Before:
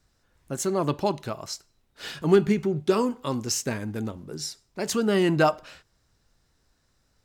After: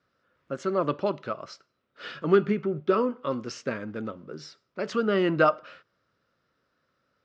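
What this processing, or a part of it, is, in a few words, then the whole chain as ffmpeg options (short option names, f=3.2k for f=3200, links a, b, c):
kitchen radio: -filter_complex "[0:a]highpass=160,equalizer=f=540:t=q:w=4:g=7,equalizer=f=820:t=q:w=4:g=-7,equalizer=f=1.3k:t=q:w=4:g=10,equalizer=f=4k:t=q:w=4:g=-5,lowpass=f=4.4k:w=0.5412,lowpass=f=4.4k:w=1.3066,asettb=1/sr,asplit=3[a][b][c];[a]atrim=end=2.504[d];[b]atrim=start=2.5:end=3.31,asetpts=PTS-STARTPTS,afade=t=in:d=0.004:c=qsin,afade=t=out:st=0.806:d=0.004:c=qsin,highshelf=f=4.9k:g=-9.5[e];[c]atrim=start=3.306[f];[d][e]acrossfade=d=0.004:c1=hsin:c2=qsin[g];[g][f]acrossfade=d=0.004:c1=qsin:c2=hsin,volume=-2.5dB"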